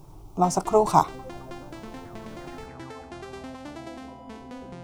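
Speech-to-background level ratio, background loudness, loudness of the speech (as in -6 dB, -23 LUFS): 19.0 dB, -41.5 LUFS, -22.5 LUFS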